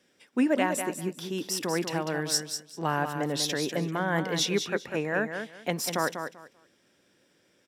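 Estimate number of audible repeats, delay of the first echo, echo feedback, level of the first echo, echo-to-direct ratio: 2, 0.195 s, 20%, -7.5 dB, -7.5 dB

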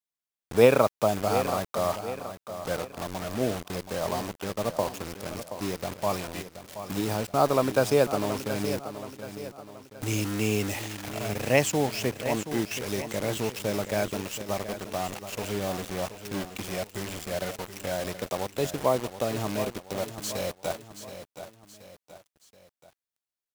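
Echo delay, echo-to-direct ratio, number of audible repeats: 0.726 s, -10.0 dB, 3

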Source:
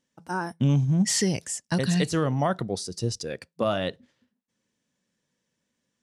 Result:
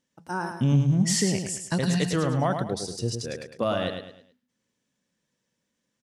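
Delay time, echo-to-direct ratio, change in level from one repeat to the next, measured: 0.106 s, -6.0 dB, -9.0 dB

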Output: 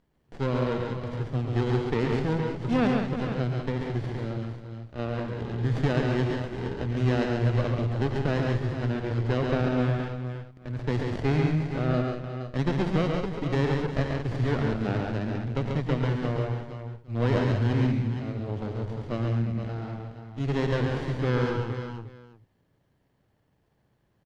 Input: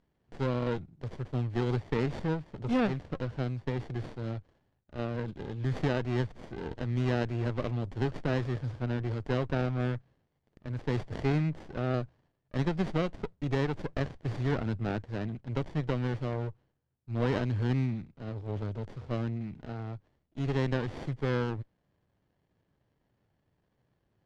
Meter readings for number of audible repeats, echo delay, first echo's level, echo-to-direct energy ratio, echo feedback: 7, 87 ms, -15.5 dB, -0.5 dB, no steady repeat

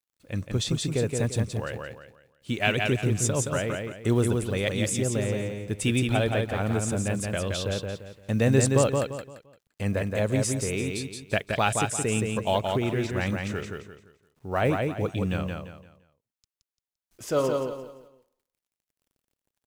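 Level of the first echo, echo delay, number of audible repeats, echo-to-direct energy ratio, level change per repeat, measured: -4.0 dB, 0.172 s, 4, -3.5 dB, -10.0 dB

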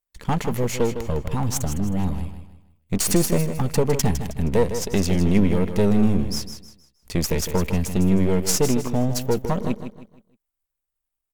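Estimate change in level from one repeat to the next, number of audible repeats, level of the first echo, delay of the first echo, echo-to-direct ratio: -9.5 dB, 3, -9.5 dB, 0.157 s, -9.0 dB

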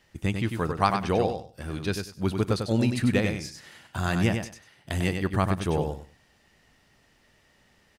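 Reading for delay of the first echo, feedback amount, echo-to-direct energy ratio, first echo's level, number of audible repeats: 97 ms, 19%, -6.0 dB, -6.0 dB, 3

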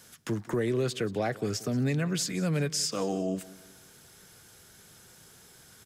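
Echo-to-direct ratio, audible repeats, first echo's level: -19.0 dB, 2, -19.5 dB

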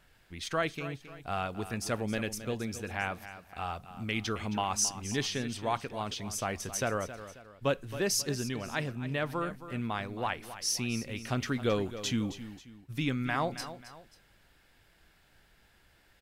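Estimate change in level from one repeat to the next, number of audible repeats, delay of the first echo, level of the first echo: -8.0 dB, 2, 0.269 s, -13.0 dB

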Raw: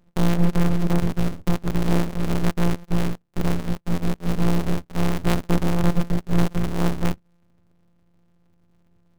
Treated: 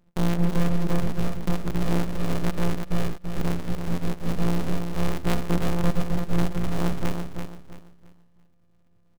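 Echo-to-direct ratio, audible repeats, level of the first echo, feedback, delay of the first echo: -6.0 dB, 3, -6.5 dB, 30%, 0.335 s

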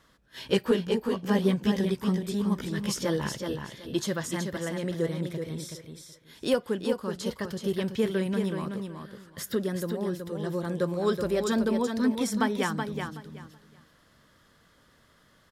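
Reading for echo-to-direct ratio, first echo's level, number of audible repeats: -6.0 dB, -6.0 dB, 3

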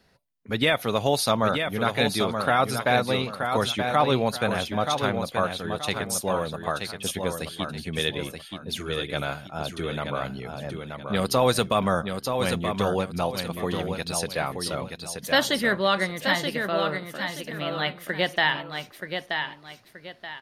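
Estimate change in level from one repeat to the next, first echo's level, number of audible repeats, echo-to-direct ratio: -10.0 dB, -6.0 dB, 2, -5.5 dB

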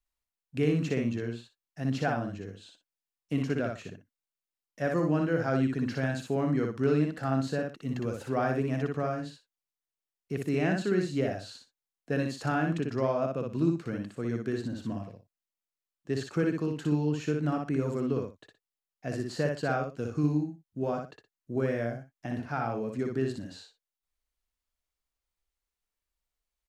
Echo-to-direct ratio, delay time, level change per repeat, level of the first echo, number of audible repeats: -3.5 dB, 60 ms, -13.0 dB, -3.5 dB, 2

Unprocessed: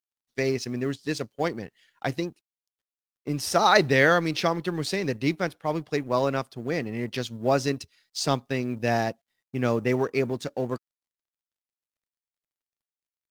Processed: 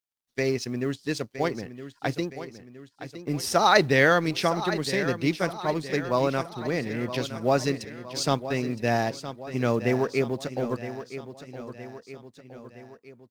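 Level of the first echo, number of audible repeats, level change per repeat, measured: -12.0 dB, 4, -5.5 dB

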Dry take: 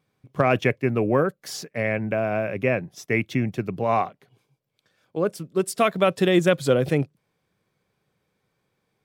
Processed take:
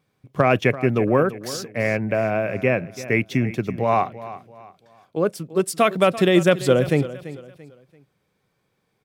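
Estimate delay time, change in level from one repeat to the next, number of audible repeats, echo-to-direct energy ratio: 0.338 s, -9.5 dB, 3, -15.0 dB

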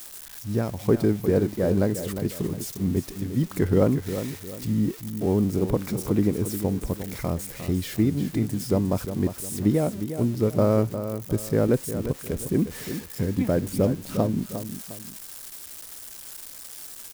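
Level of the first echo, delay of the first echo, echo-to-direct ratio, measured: -10.0 dB, 0.355 s, -9.5 dB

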